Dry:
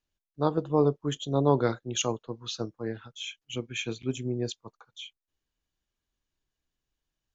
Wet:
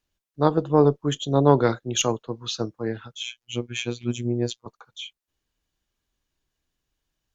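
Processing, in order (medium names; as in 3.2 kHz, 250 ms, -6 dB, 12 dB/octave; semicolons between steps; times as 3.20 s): 3.23–4.66 s: robot voice 120 Hz; Chebyshev shaper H 2 -18 dB, 5 -44 dB, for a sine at -9 dBFS; trim +5.5 dB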